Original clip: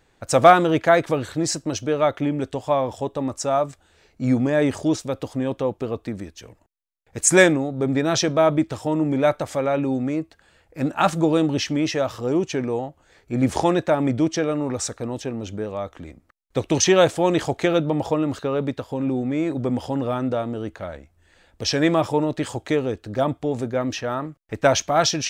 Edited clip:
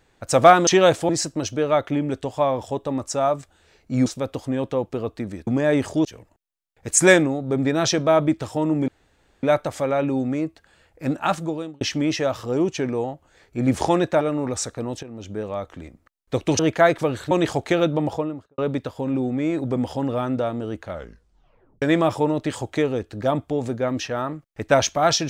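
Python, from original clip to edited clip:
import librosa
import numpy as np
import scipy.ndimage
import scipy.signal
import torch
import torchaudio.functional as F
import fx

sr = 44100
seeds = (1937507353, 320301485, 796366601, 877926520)

y = fx.studio_fade_out(x, sr, start_s=17.92, length_s=0.59)
y = fx.edit(y, sr, fx.swap(start_s=0.67, length_s=0.72, other_s=16.82, other_length_s=0.42),
    fx.move(start_s=4.36, length_s=0.58, to_s=6.35),
    fx.insert_room_tone(at_s=9.18, length_s=0.55),
    fx.fade_out_span(start_s=10.82, length_s=0.74),
    fx.cut(start_s=13.96, length_s=0.48),
    fx.fade_in_from(start_s=15.26, length_s=0.4, floor_db=-13.5),
    fx.tape_stop(start_s=20.85, length_s=0.9), tone=tone)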